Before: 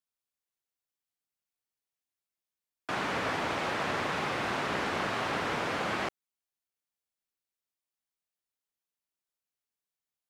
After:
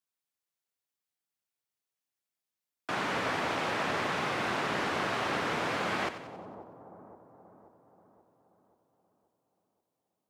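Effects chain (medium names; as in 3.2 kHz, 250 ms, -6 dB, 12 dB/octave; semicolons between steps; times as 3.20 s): high-pass 82 Hz; two-band feedback delay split 920 Hz, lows 531 ms, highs 92 ms, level -11.5 dB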